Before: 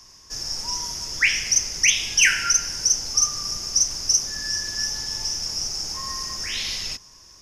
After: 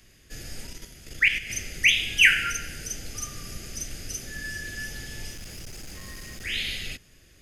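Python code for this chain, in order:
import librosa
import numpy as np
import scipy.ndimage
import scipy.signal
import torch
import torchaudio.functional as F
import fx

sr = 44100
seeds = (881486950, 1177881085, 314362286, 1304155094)

y = fx.fixed_phaser(x, sr, hz=2400.0, stages=4)
y = fx.level_steps(y, sr, step_db=10, at=(0.67, 1.5))
y = fx.clip_hard(y, sr, threshold_db=-38.5, at=(5.31, 6.45))
y = y * librosa.db_to_amplitude(2.5)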